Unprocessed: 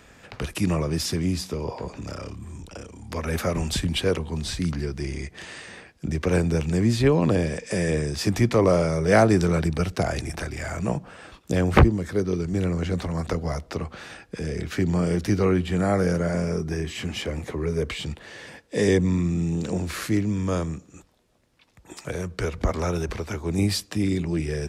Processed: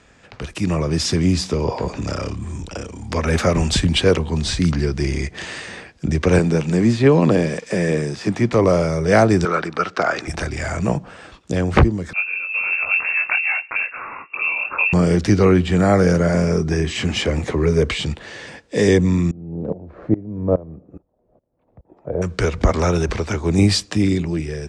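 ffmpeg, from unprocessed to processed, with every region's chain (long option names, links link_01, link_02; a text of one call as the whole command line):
ffmpeg -i in.wav -filter_complex "[0:a]asettb=1/sr,asplit=3[link_01][link_02][link_03];[link_01]atrim=end=6.394[link_04];[link_02]atrim=start=6.39:end=8.53,asetpts=PTS-STARTPTS,afade=type=in:duration=0.004:curve=qsin,afade=type=out:start_time=2.136:duration=0.004:curve=qsin,acrossover=split=2700[link_05][link_06];[link_06]acompressor=threshold=-38dB:ratio=4:attack=1:release=60[link_07];[link_05][link_07]amix=inputs=2:normalize=0,highpass=frequency=120:width=0.5412,highpass=frequency=120:width=1.3066,aeval=exprs='sgn(val(0))*max(abs(val(0))-0.00398,0)':channel_layout=same[link_08];[link_03]atrim=start=8.526[link_09];[link_04][link_08]acrossfade=duration=0.004:curve1=hsin:curve2=qsin[link_10];[link_10][link_09]acrossfade=duration=0.004:curve1=qsin:curve2=hsin,asettb=1/sr,asplit=3[link_11][link_12][link_13];[link_11]atrim=end=9.454[link_14];[link_12]atrim=start=9.45:end=10.28,asetpts=PTS-STARTPTS,afade=type=in:duration=0.004:curve=qsin,afade=type=out:start_time=0.826:duration=0.004:curve=qsin,highpass=310,lowpass=5200,equalizer=frequency=1300:width_type=o:width=0.63:gain=12[link_15];[link_13]atrim=start=10.276[link_16];[link_14][link_15]acrossfade=duration=0.004:curve1=hsin:curve2=qsin[link_17];[link_17][link_16]acrossfade=duration=0.004:curve1=qsin:curve2=hsin,asettb=1/sr,asplit=3[link_18][link_19][link_20];[link_18]atrim=end=12.134[link_21];[link_19]atrim=start=12.13:end=14.93,asetpts=PTS-STARTPTS,afade=type=in:duration=0.004:curve=qsin,afade=type=out:start_time=2.796:duration=0.004:curve=qsin,equalizer=frequency=1600:width=2:gain=5,flanger=delay=17.5:depth=7.7:speed=2.8,lowpass=frequency=2400:width_type=q:width=0.5098,lowpass=frequency=2400:width_type=q:width=0.6013,lowpass=frequency=2400:width_type=q:width=0.9,lowpass=frequency=2400:width_type=q:width=2.563,afreqshift=-2800[link_22];[link_20]atrim=start=14.926[link_23];[link_21][link_22]acrossfade=duration=0.004:curve1=hsin:curve2=qsin[link_24];[link_24][link_23]acrossfade=duration=0.004:curve1=qsin:curve2=hsin,asettb=1/sr,asplit=3[link_25][link_26][link_27];[link_25]atrim=end=19.314[link_28];[link_26]atrim=start=19.31:end=22.22,asetpts=PTS-STARTPTS,afade=type=in:duration=0.004:curve=qsin,afade=type=out:start_time=2.906:duration=0.004:curve=qsin,lowpass=frequency=630:width_type=q:width=2.1,aeval=exprs='val(0)*pow(10,-22*if(lt(mod(-2.4*n/s,1),2*abs(-2.4)/1000),1-mod(-2.4*n/s,1)/(2*abs(-2.4)/1000),(mod(-2.4*n/s,1)-2*abs(-2.4)/1000)/(1-2*abs(-2.4)/1000))/20)':channel_layout=same[link_29];[link_27]atrim=start=22.216[link_30];[link_28][link_29]acrossfade=duration=0.004:curve1=hsin:curve2=qsin[link_31];[link_31][link_30]acrossfade=duration=0.004:curve1=qsin:curve2=hsin,lowpass=frequency=8500:width=0.5412,lowpass=frequency=8500:width=1.3066,dynaudnorm=framelen=180:gausssize=9:maxgain=11.5dB,volume=-1dB" out.wav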